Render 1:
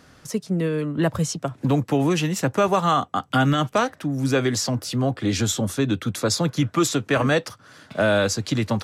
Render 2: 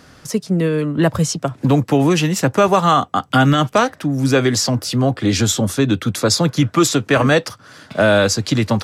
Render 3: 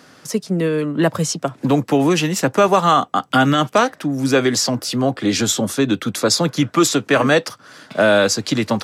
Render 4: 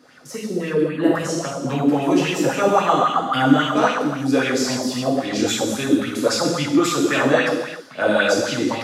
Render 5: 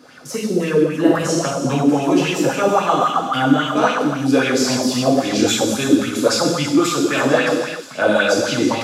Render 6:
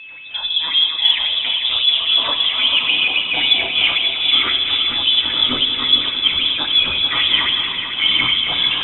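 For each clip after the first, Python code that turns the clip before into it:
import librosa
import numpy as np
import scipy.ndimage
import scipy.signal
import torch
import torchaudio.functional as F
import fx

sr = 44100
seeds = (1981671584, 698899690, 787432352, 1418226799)

y1 = fx.peak_eq(x, sr, hz=4900.0, db=2.5, octaves=0.22)
y1 = y1 * librosa.db_to_amplitude(6.0)
y2 = scipy.signal.sosfilt(scipy.signal.butter(2, 180.0, 'highpass', fs=sr, output='sos'), y1)
y3 = fx.rev_gated(y2, sr, seeds[0], gate_ms=450, shape='falling', drr_db=-5.5)
y3 = fx.bell_lfo(y3, sr, hz=3.7, low_hz=280.0, high_hz=2800.0, db=12)
y3 = y3 * librosa.db_to_amplitude(-12.5)
y4 = fx.rider(y3, sr, range_db=4, speed_s=0.5)
y4 = fx.notch(y4, sr, hz=1900.0, q=12.0)
y4 = fx.echo_wet_highpass(y4, sr, ms=326, feedback_pct=65, hz=4300.0, wet_db=-11)
y4 = y4 * librosa.db_to_amplitude(2.5)
y5 = fx.echo_feedback(y4, sr, ms=444, feedback_pct=56, wet_db=-8.0)
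y5 = y5 + 10.0 ** (-33.0 / 20.0) * np.sin(2.0 * np.pi * 1100.0 * np.arange(len(y5)) / sr)
y5 = fx.freq_invert(y5, sr, carrier_hz=3700)
y5 = y5 * librosa.db_to_amplitude(-1.0)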